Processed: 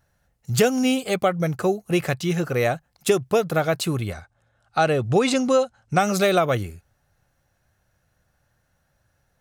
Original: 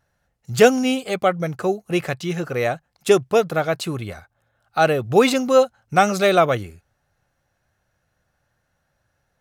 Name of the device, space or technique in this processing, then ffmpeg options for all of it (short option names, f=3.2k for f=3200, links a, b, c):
ASMR close-microphone chain: -filter_complex "[0:a]lowshelf=f=190:g=5,acompressor=threshold=-15dB:ratio=6,highshelf=f=7.1k:g=6.5,asettb=1/sr,asplit=3[a][b][c];[a]atrim=end=4.124[d];[b]atrim=start=4.12:end=5.99,asetpts=PTS-STARTPTS,afade=t=in:d=0.004:c=qsin,afade=t=out:st=1.866:d=0.004:c=qsin,lowpass=f=9.4k:w=0.5412,lowpass=f=9.4k:w=1.3066[e];[c]atrim=start=5.986[f];[d][e]acrossfade=d=0.004:c1=hsin:c2=qsin[g];[g][f]acrossfade=d=0.004:c1=qsin:c2=hsin"